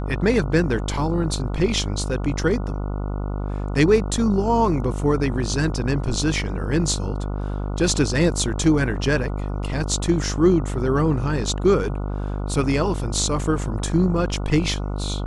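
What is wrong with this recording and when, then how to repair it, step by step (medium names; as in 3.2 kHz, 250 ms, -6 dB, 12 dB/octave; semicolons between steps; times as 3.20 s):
buzz 50 Hz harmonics 29 -26 dBFS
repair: de-hum 50 Hz, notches 29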